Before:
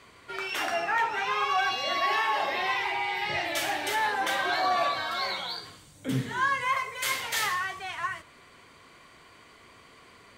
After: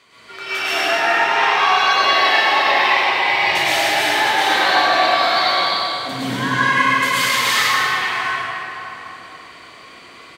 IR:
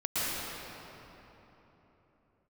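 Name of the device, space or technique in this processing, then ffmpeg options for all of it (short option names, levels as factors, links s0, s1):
PA in a hall: -filter_complex "[0:a]highpass=f=190:p=1,equalizer=f=3900:t=o:w=1.7:g=6,aecho=1:1:97:0.501[s0];[1:a]atrim=start_sample=2205[s1];[s0][s1]afir=irnorm=-1:irlink=0"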